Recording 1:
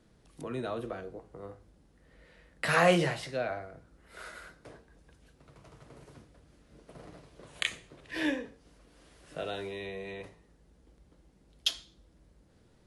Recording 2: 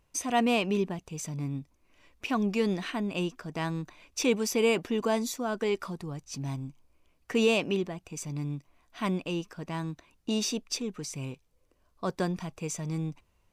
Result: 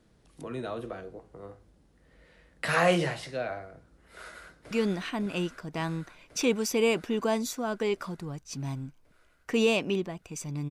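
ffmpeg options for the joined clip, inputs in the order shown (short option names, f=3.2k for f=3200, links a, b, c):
-filter_complex "[0:a]apad=whole_dur=10.7,atrim=end=10.7,atrim=end=4.712[a];[1:a]atrim=start=2.518:end=8.51[b];[a][b]acrossfade=d=0.004:c1=hsin:c2=hsin,asplit=2[c][d];[d]afade=t=in:st=4.07:d=0.01,afade=t=out:st=4.71:d=0.01,aecho=0:1:550|1100|1650|2200|2750|3300|3850|4400|4950|5500|6050|6600:0.749894|0.562421|0.421815|0.316362|0.237271|0.177953|0.133465|0.100099|0.0750741|0.0563056|0.0422292|0.0316719[e];[c][e]amix=inputs=2:normalize=0"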